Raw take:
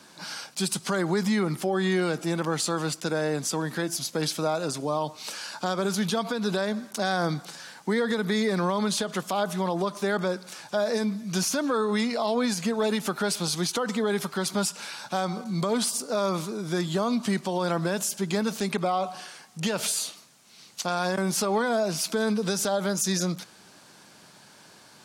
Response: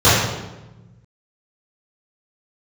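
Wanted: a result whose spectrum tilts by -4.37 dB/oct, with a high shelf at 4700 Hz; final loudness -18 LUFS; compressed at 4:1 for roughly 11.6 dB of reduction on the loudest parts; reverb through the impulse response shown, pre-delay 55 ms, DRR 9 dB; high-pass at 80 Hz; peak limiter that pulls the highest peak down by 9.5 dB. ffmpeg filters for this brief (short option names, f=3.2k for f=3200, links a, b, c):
-filter_complex "[0:a]highpass=80,highshelf=f=4.7k:g=-4.5,acompressor=threshold=-36dB:ratio=4,alimiter=level_in=6dB:limit=-24dB:level=0:latency=1,volume=-6dB,asplit=2[a][b];[1:a]atrim=start_sample=2205,adelay=55[c];[b][c]afir=irnorm=-1:irlink=0,volume=-37dB[d];[a][d]amix=inputs=2:normalize=0,volume=20.5dB"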